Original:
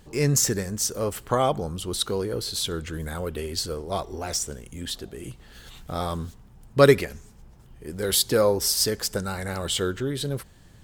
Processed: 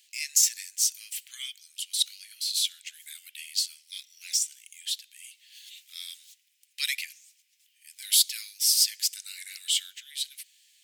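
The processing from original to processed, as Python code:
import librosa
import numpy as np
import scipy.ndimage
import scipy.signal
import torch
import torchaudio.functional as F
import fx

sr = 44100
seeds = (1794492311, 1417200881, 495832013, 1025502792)

p1 = scipy.signal.sosfilt(scipy.signal.butter(8, 2200.0, 'highpass', fs=sr, output='sos'), x)
p2 = 10.0 ** (-17.5 / 20.0) * np.tanh(p1 / 10.0 ** (-17.5 / 20.0))
y = p1 + (p2 * 10.0 ** (-11.5 / 20.0))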